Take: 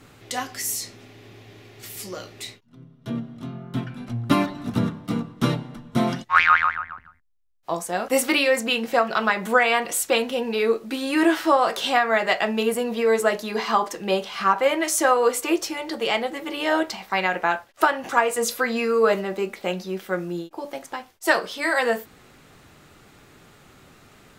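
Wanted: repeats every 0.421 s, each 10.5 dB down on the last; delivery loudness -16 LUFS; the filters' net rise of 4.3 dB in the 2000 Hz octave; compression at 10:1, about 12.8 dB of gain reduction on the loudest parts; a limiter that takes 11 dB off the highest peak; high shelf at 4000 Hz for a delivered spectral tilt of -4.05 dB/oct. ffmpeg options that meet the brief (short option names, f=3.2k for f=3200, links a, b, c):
-af "equalizer=f=2k:t=o:g=4.5,highshelf=f=4k:g=4,acompressor=threshold=-21dB:ratio=10,alimiter=limit=-19.5dB:level=0:latency=1,aecho=1:1:421|842|1263:0.299|0.0896|0.0269,volume=13.5dB"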